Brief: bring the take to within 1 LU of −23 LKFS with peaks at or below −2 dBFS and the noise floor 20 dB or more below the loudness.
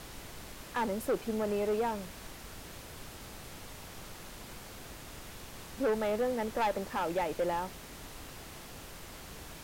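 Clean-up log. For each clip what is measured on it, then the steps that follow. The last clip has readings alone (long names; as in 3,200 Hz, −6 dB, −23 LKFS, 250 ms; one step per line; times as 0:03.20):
share of clipped samples 1.2%; peaks flattened at −25.5 dBFS; background noise floor −48 dBFS; target noise floor −57 dBFS; integrated loudness −36.5 LKFS; sample peak −25.5 dBFS; target loudness −23.0 LKFS
→ clipped peaks rebuilt −25.5 dBFS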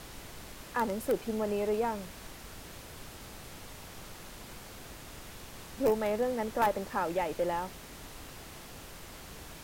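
share of clipped samples 0.0%; background noise floor −48 dBFS; target noise floor −52 dBFS
→ noise reduction from a noise print 6 dB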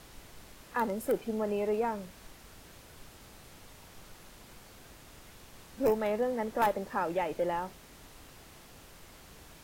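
background noise floor −54 dBFS; integrated loudness −32.0 LKFS; sample peak −16.5 dBFS; target loudness −23.0 LKFS
→ level +9 dB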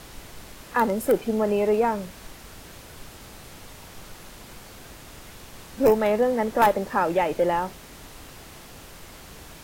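integrated loudness −23.0 LKFS; sample peak −7.5 dBFS; background noise floor −45 dBFS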